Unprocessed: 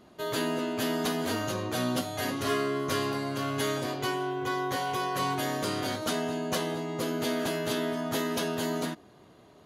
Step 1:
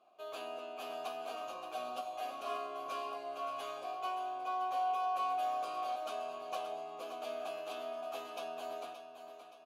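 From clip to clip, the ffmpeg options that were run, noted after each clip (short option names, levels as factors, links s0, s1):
-filter_complex "[0:a]asplit=3[s0][s1][s2];[s0]bandpass=f=730:t=q:w=8,volume=1[s3];[s1]bandpass=f=1090:t=q:w=8,volume=0.501[s4];[s2]bandpass=f=2440:t=q:w=8,volume=0.355[s5];[s3][s4][s5]amix=inputs=3:normalize=0,aemphasis=mode=production:type=bsi,aecho=1:1:573|1146|1719|2292|2865:0.335|0.147|0.0648|0.0285|0.0126"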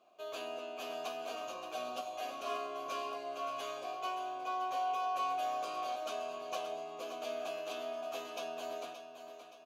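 -af "equalizer=f=800:t=o:w=0.33:g=-6,equalizer=f=1250:t=o:w=0.33:g=-4,equalizer=f=6300:t=o:w=0.33:g=5,equalizer=f=10000:t=o:w=0.33:g=-5,volume=1.41"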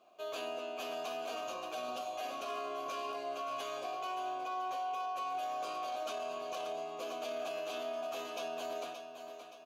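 -af "alimiter=level_in=3.16:limit=0.0631:level=0:latency=1:release=16,volume=0.316,volume=1.33"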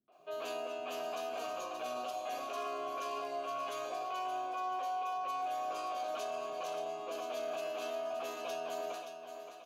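-filter_complex "[0:a]acrossover=split=220|3300[s0][s1][s2];[s1]adelay=80[s3];[s2]adelay=120[s4];[s0][s3][s4]amix=inputs=3:normalize=0,volume=1.12"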